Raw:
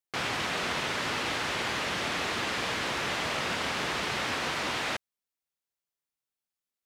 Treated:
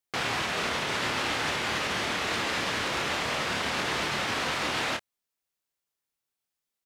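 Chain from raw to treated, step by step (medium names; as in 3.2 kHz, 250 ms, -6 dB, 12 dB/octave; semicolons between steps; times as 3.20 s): peak limiter -24 dBFS, peak gain reduction 5 dB; doubling 27 ms -6 dB; trim +3 dB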